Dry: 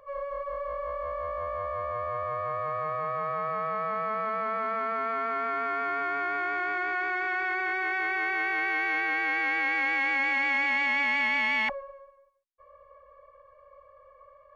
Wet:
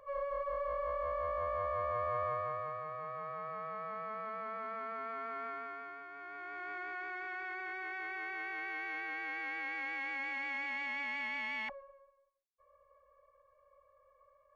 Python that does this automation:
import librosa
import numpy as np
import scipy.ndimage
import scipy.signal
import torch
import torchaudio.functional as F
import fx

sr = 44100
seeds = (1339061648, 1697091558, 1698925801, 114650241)

y = fx.gain(x, sr, db=fx.line((2.25, -3.0), (2.85, -11.5), (5.47, -11.5), (6.08, -20.0), (6.72, -12.5)))